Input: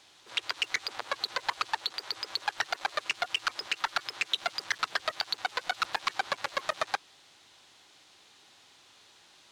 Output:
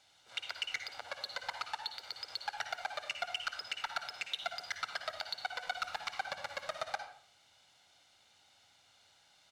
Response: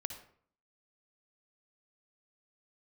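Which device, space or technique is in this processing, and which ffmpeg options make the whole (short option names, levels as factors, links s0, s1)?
microphone above a desk: -filter_complex "[0:a]aecho=1:1:1.4:0.57[s0];[1:a]atrim=start_sample=2205[s1];[s0][s1]afir=irnorm=-1:irlink=0,volume=0.398"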